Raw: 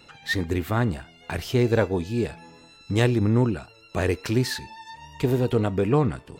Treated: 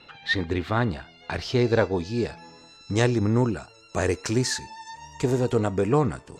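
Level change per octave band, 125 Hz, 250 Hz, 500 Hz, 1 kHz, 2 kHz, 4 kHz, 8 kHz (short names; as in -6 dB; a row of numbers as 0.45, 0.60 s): -2.0, -1.0, 0.0, +1.5, +1.0, +1.5, +5.5 dB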